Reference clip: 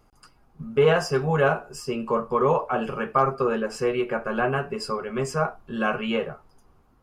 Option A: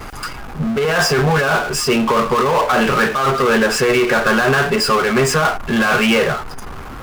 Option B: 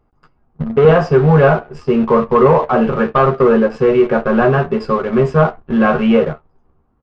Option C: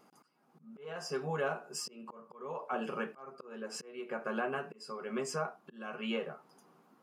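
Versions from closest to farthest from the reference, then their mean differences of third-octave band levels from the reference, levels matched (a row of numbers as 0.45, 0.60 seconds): B, C, A; 4.0, 6.5, 11.0 decibels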